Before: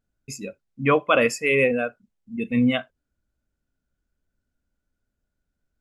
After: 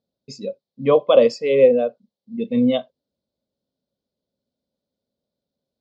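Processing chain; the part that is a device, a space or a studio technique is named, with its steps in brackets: kitchen radio (cabinet simulation 220–4200 Hz, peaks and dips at 310 Hz -8 dB, 540 Hz +9 dB, 1.4 kHz -10 dB, 2.6 kHz -10 dB); FFT filter 280 Hz 0 dB, 1.2 kHz -7 dB, 1.7 kHz -18 dB, 4.2 kHz +6 dB, 6.8 kHz +3 dB; trim +6 dB

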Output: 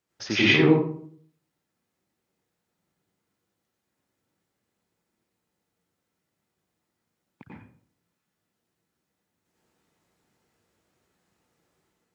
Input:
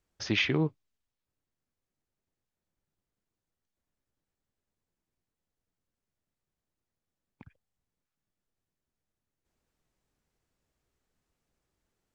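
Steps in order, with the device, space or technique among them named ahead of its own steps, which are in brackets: far laptop microphone (reverberation RT60 0.55 s, pre-delay 88 ms, DRR -6 dB; high-pass 140 Hz 12 dB/octave; level rider gain up to 4.5 dB)

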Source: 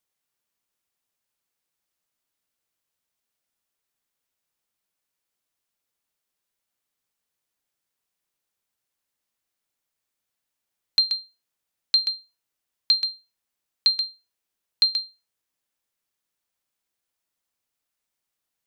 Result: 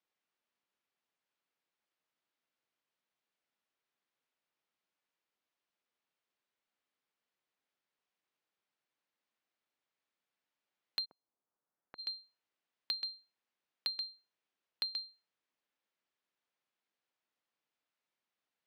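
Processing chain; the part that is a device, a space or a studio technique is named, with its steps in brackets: AM radio (band-pass 180–3500 Hz; compression, threshold -32 dBFS, peak gain reduction 11.5 dB; saturation -19.5 dBFS, distortion -18 dB); 11.04–11.98 s: low-pass 1 kHz -> 1.7 kHz 24 dB/octave; trim -2 dB

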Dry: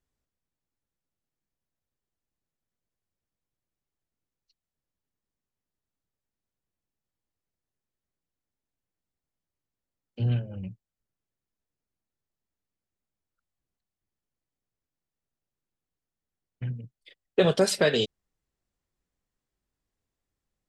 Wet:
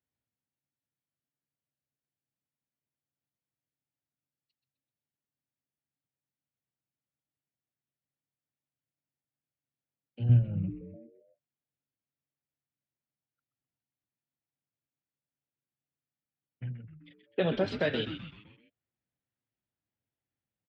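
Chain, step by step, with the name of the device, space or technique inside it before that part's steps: 10.29–10.70 s: tilt EQ -3.5 dB/octave; frequency-shifting delay pedal into a guitar cabinet (frequency-shifting echo 128 ms, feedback 48%, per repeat -140 Hz, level -9 dB; cabinet simulation 110–3400 Hz, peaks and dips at 110 Hz +4 dB, 420 Hz -5 dB, 1.1 kHz -6 dB); trim -5.5 dB

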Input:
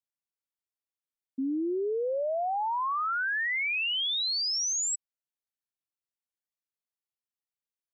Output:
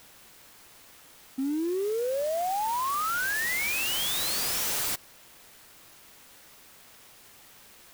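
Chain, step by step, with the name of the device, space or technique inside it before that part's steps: 2.50–2.95 s: steep low-pass 5 kHz 48 dB/octave; early CD player with a faulty converter (jump at every zero crossing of -41 dBFS; sampling jitter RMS 0.049 ms)

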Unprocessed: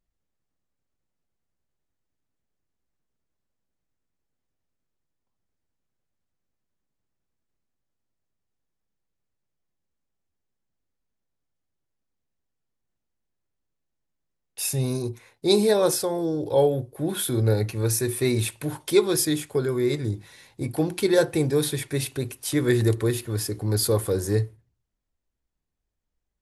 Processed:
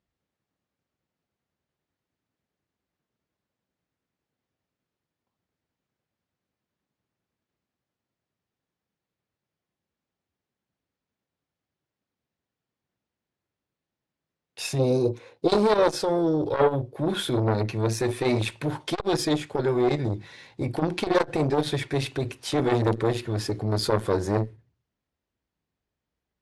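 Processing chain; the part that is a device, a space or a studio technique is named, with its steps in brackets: valve radio (band-pass 89–4500 Hz; valve stage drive 14 dB, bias 0.45; transformer saturation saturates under 760 Hz); 14.79–15.48 s: graphic EQ with 31 bands 315 Hz +7 dB, 500 Hz +12 dB, 2 kHz -7 dB; trim +6 dB

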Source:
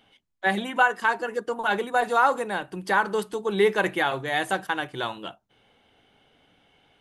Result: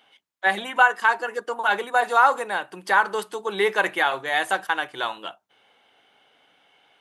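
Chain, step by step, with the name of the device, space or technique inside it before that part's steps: filter by subtraction (in parallel: low-pass 1 kHz 12 dB/octave + polarity flip); on the sum: trim +2 dB

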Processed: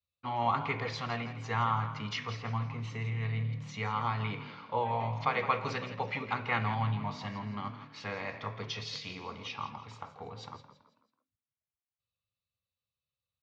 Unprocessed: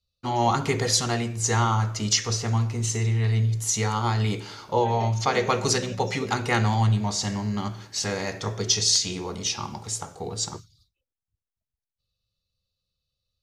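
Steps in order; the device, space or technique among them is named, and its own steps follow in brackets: frequency-shifting delay pedal into a guitar cabinet (frequency-shifting echo 164 ms, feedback 38%, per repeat +38 Hz, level -12.5 dB; cabinet simulation 94–3500 Hz, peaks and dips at 180 Hz -5 dB, 360 Hz -10 dB, 1.1 kHz +8 dB, 2.3 kHz +7 dB); trim -9 dB

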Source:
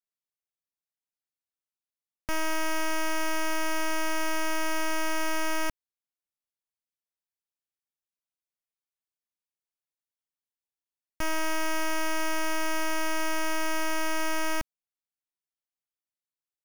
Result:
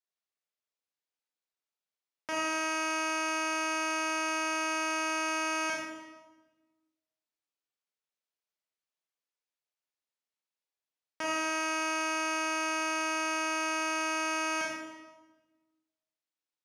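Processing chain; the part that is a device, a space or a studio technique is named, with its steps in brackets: supermarket ceiling speaker (band-pass 340–6400 Hz; reverberation RT60 1.2 s, pre-delay 26 ms, DRR -2.5 dB); trim -2 dB

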